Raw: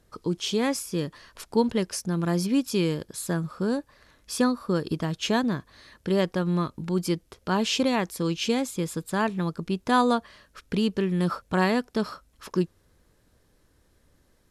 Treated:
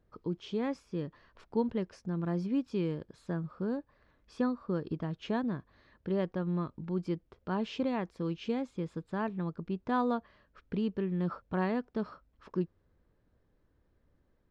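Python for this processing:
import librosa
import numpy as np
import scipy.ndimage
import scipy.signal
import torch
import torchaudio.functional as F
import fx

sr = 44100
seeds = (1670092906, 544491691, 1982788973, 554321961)

y = fx.spacing_loss(x, sr, db_at_10k=32)
y = y * 10.0 ** (-6.5 / 20.0)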